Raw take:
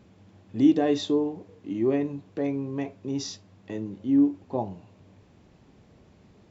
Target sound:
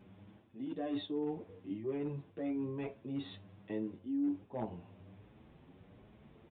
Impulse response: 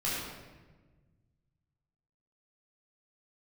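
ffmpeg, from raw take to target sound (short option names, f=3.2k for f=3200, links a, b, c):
-filter_complex "[0:a]areverse,acompressor=threshold=-31dB:ratio=16,areverse,volume=27.5dB,asoftclip=hard,volume=-27.5dB,aresample=8000,aresample=44100,asplit=2[a][b];[b]adelay=8.1,afreqshift=1.2[c];[a][c]amix=inputs=2:normalize=1"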